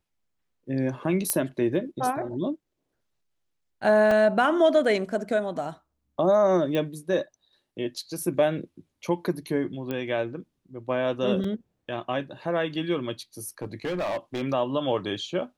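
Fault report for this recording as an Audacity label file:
1.300000	1.300000	click −8 dBFS
4.110000	4.110000	drop-out 3 ms
6.750000	6.750000	click −17 dBFS
9.910000	9.910000	click −18 dBFS
11.440000	11.440000	drop-out 3.8 ms
13.480000	14.420000	clipping −25 dBFS

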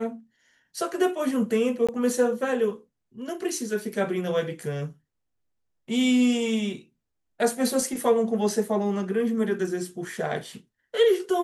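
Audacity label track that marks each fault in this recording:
1.870000	1.890000	drop-out 16 ms

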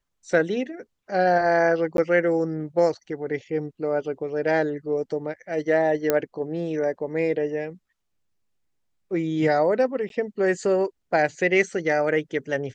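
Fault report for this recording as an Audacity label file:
1.970000	1.980000	drop-out 12 ms
6.100000	6.100000	click −7 dBFS
10.090000	10.100000	drop-out

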